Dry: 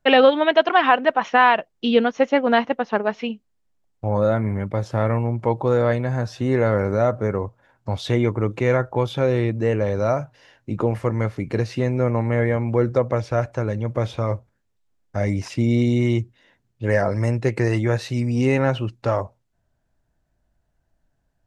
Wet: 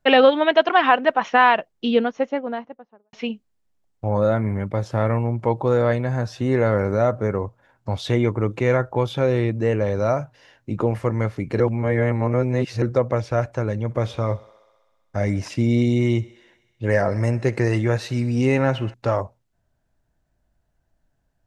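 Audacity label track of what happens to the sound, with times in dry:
1.570000	3.130000	studio fade out
11.600000	12.820000	reverse
13.830000	18.940000	thinning echo 64 ms, feedback 78%, high-pass 280 Hz, level -21 dB

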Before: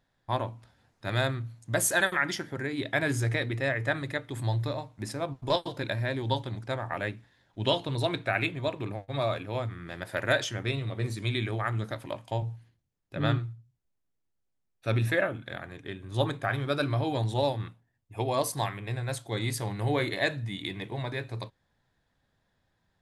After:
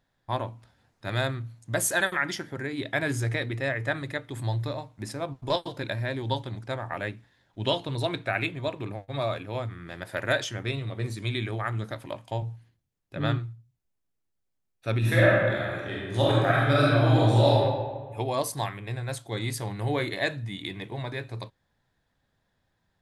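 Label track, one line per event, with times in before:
14.980000	17.570000	reverb throw, RT60 1.5 s, DRR -6.5 dB

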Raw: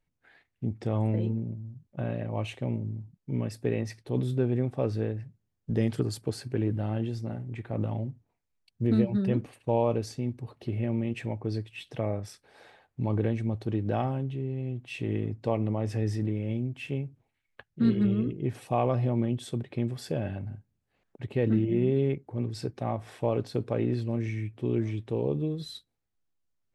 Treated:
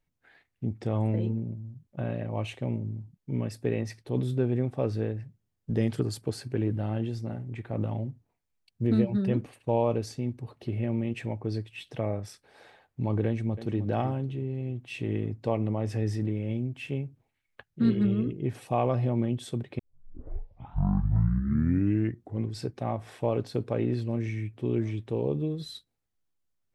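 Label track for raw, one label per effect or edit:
13.260000	13.820000	echo throw 0.31 s, feedback 40%, level -12 dB
19.790000	19.790000	tape start 2.80 s

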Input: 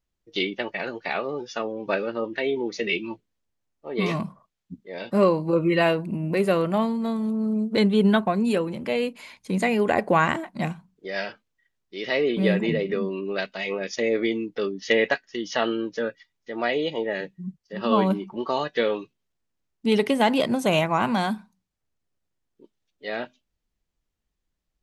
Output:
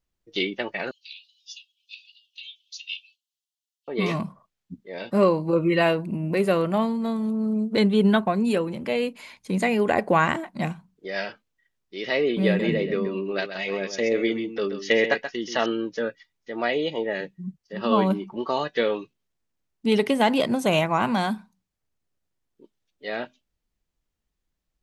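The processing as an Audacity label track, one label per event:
0.910000	3.880000	steep high-pass 2800 Hz 72 dB/oct
12.460000	15.660000	echo 0.131 s -9.5 dB

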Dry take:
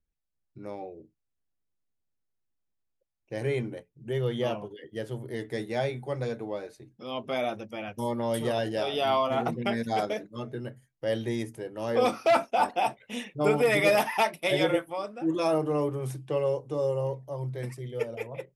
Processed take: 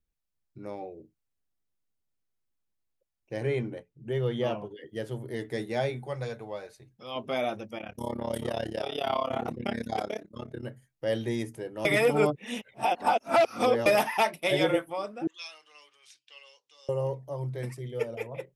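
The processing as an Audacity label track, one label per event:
3.370000	4.800000	high shelf 6400 Hz -9 dB
6.070000	7.160000	bell 290 Hz -10.5 dB 1.1 oct
7.780000	10.630000	AM modulator 34 Hz, depth 85%
11.850000	13.860000	reverse
15.270000	16.890000	Butterworth band-pass 3900 Hz, Q 1.1

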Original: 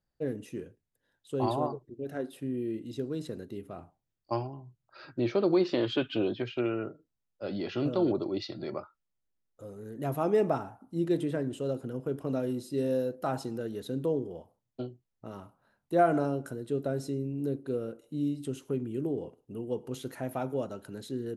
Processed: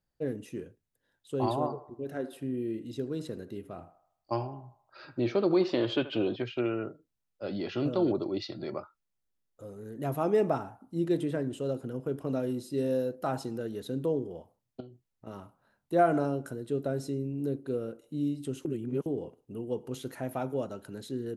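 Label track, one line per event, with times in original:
1.570000	6.360000	narrowing echo 78 ms, feedback 50%, level -12.5 dB
14.800000	15.270000	compressor 3:1, threshold -47 dBFS
18.650000	19.060000	reverse

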